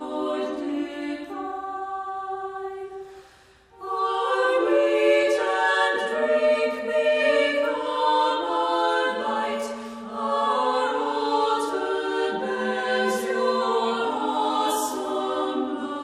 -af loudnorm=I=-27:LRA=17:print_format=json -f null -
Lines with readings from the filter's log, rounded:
"input_i" : "-24.1",
"input_tp" : "-9.7",
"input_lra" : "4.2",
"input_thresh" : "-34.4",